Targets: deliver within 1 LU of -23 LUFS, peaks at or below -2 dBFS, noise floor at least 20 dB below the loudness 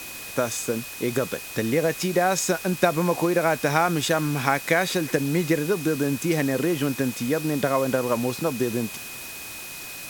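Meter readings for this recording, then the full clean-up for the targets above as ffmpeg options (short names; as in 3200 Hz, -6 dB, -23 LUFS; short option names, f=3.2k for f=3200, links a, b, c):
steady tone 2500 Hz; tone level -40 dBFS; noise floor -37 dBFS; noise floor target -45 dBFS; loudness -24.5 LUFS; peak -4.0 dBFS; loudness target -23.0 LUFS
-> -af "bandreject=f=2.5k:w=30"
-af "afftdn=nr=8:nf=-37"
-af "volume=1.5dB"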